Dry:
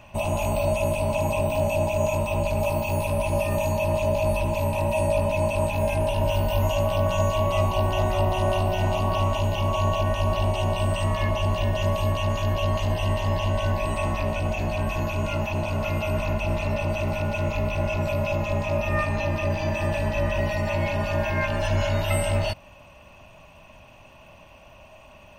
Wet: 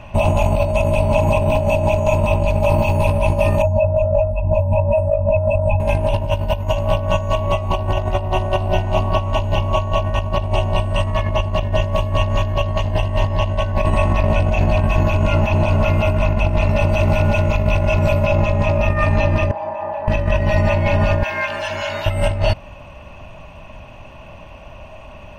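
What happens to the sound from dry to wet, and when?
0:03.62–0:05.80: expanding power law on the bin magnitudes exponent 1.8
0:16.66–0:18.25: high-shelf EQ 5,400 Hz +6.5 dB
0:19.51–0:20.08: resonant band-pass 840 Hz, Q 3.1
0:21.23–0:22.06: high-pass filter 1,400 Hz 6 dB per octave
whole clip: low-pass filter 2,800 Hz 6 dB per octave; low-shelf EQ 88 Hz +7 dB; compressor whose output falls as the input rises −23 dBFS, ratio −0.5; level +7.5 dB

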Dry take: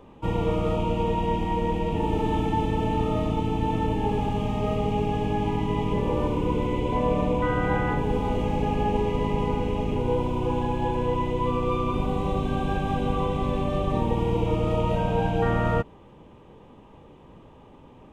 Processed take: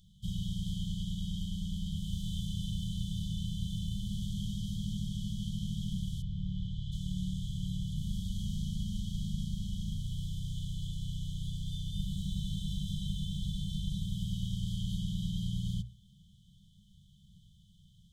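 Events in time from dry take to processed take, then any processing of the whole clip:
0:06.21–0:06.91: low-pass filter 2,100 Hz → 3,500 Hz
whole clip: brick-wall band-stop 210–3,000 Hz; high-shelf EQ 2,100 Hz +10.5 dB; mains-hum notches 60/120 Hz; level −6.5 dB

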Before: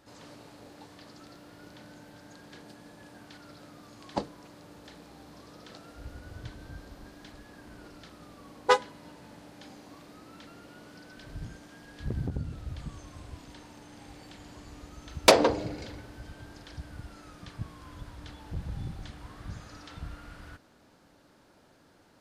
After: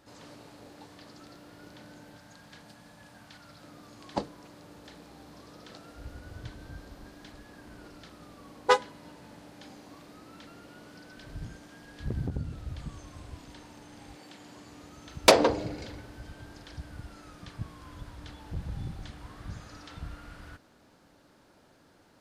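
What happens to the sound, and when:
0:02.17–0:03.64: parametric band 370 Hz −10.5 dB
0:14.15–0:15.18: high-pass filter 210 Hz → 82 Hz

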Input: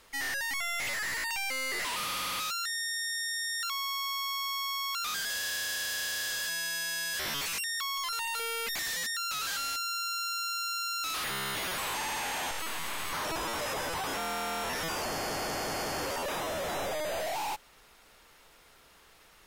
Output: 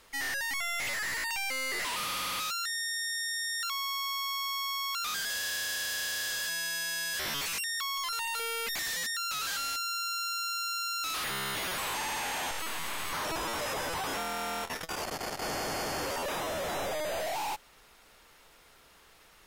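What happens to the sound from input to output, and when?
0:14.22–0:15.42: saturating transformer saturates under 280 Hz

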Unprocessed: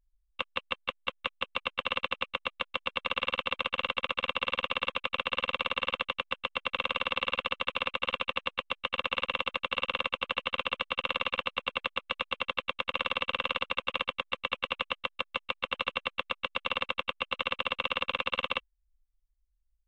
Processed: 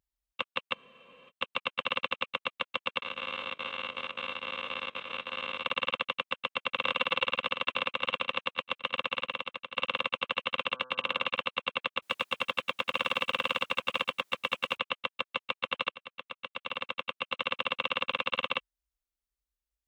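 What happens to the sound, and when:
0:00.76: frozen spectrum 0.52 s
0:03.02–0:05.66: spectrum averaged block by block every 50 ms
0:06.22–0:06.72: delay throw 560 ms, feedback 50%, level −0.5 dB
0:08.92–0:09.77: fade out, to −12.5 dB
0:10.69–0:11.25: hum removal 127.5 Hz, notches 13
0:12.02–0:14.77: mu-law and A-law mismatch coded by mu
0:15.89–0:17.58: fade in, from −17 dB
whole clip: high-pass filter 100 Hz 12 dB per octave

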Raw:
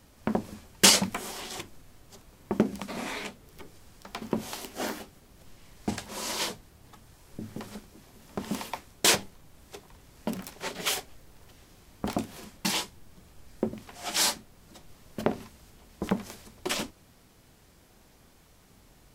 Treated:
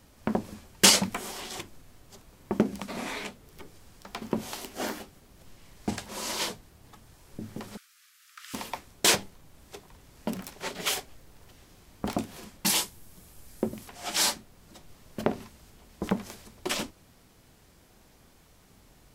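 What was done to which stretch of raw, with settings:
0:07.77–0:08.54: Butterworth high-pass 1,200 Hz 96 dB per octave
0:12.66–0:13.89: parametric band 12,000 Hz +11 dB 1.4 octaves

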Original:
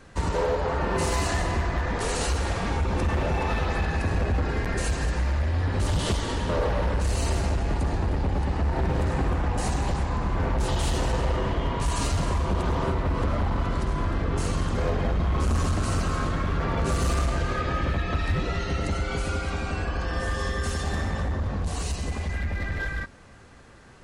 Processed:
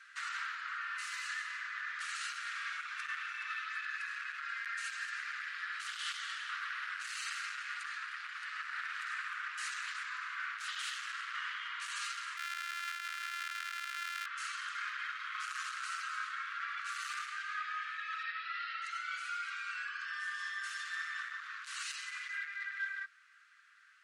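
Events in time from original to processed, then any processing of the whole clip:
0:10.94–0:11.35: ring modulation 160 Hz
0:12.37–0:14.26: samples sorted by size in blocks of 128 samples
0:18.23–0:18.82: elliptic low-pass filter 5,000 Hz
whole clip: Butterworth high-pass 1,300 Hz 72 dB per octave; spectral tilt −4.5 dB per octave; speech leveller within 4 dB 0.5 s; level +1.5 dB

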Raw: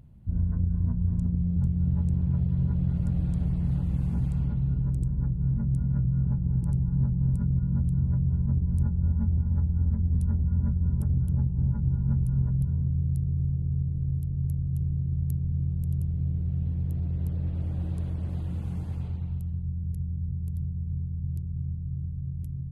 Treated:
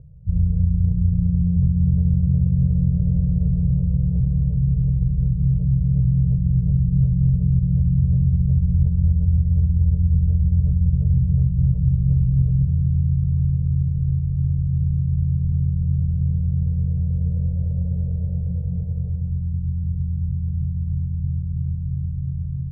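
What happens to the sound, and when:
0:12.72–0:13.33: Gaussian smoothing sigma 12 samples
whole clip: brick-wall band-stop 190–420 Hz; Butterworth low-pass 540 Hz 36 dB per octave; level +7.5 dB

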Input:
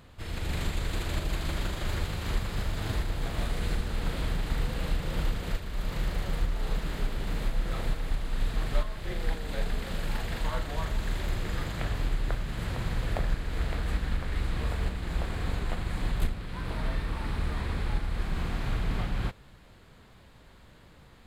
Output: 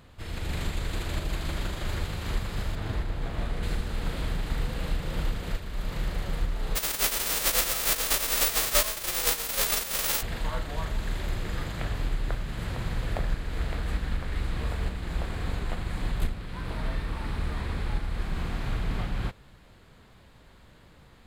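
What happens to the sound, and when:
0:02.75–0:03.63: high-shelf EQ 3,900 Hz −9.5 dB
0:06.75–0:10.21: spectral envelope flattened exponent 0.1

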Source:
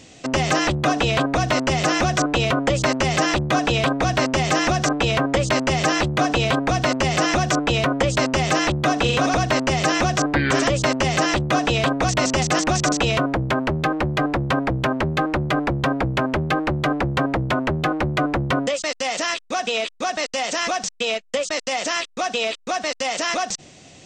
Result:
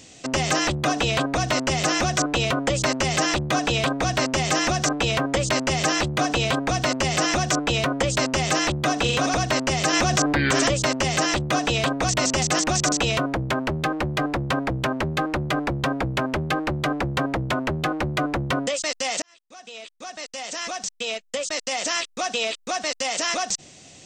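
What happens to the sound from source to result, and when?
0:09.93–0:10.74: envelope flattener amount 70%
0:19.22–0:21.96: fade in
whole clip: high-shelf EQ 4,900 Hz +9 dB; level −3.5 dB

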